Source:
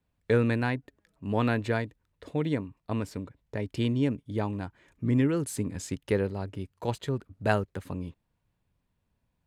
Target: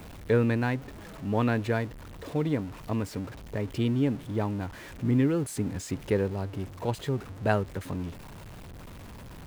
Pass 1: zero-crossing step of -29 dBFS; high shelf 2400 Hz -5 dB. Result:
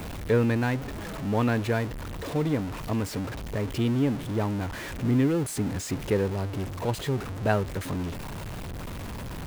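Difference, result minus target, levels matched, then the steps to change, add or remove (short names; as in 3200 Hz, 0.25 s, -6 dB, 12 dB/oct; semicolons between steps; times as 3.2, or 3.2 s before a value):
zero-crossing step: distortion +7 dB
change: zero-crossing step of -37.5 dBFS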